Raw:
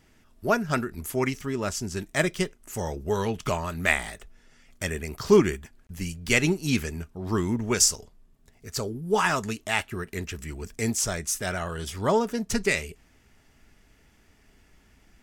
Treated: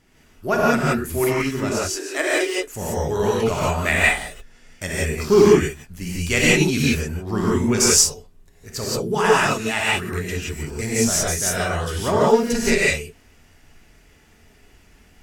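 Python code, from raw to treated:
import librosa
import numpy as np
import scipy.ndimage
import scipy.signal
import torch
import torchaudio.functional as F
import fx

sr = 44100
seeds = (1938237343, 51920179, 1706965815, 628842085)

y = fx.cheby1_highpass(x, sr, hz=280.0, order=8, at=(1.79, 2.6))
y = fx.rev_gated(y, sr, seeds[0], gate_ms=200, shape='rising', drr_db=-6.5)
y = fx.cheby_harmonics(y, sr, harmonics=(4,), levels_db=(-31,), full_scale_db=-1.0)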